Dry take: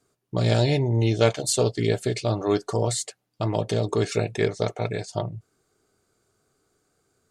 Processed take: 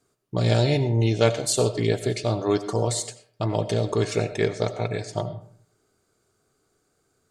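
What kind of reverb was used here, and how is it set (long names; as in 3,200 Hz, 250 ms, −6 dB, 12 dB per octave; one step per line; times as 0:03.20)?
comb and all-pass reverb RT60 0.54 s, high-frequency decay 0.6×, pre-delay 50 ms, DRR 12 dB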